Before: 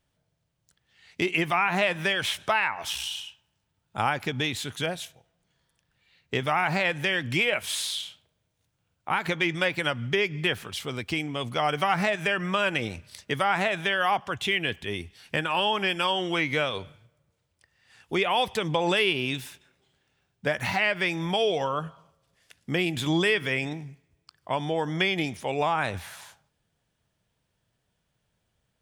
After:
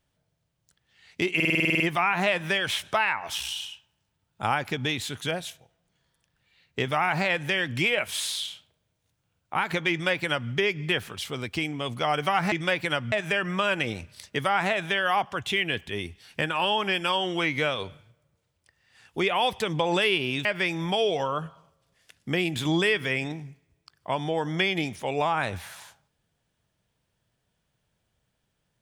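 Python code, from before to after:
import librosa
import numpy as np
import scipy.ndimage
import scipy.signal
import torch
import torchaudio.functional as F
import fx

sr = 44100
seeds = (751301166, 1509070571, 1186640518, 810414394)

y = fx.edit(x, sr, fx.stutter(start_s=1.35, slice_s=0.05, count=10),
    fx.duplicate(start_s=9.46, length_s=0.6, to_s=12.07),
    fx.cut(start_s=19.4, length_s=1.46), tone=tone)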